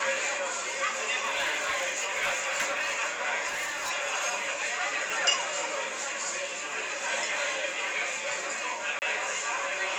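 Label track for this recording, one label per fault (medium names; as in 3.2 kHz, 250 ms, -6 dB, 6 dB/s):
1.240000	2.990000	clipped -23.5 dBFS
3.470000	3.910000	clipped -28.5 dBFS
5.100000	5.100000	pop
8.990000	9.020000	dropout 29 ms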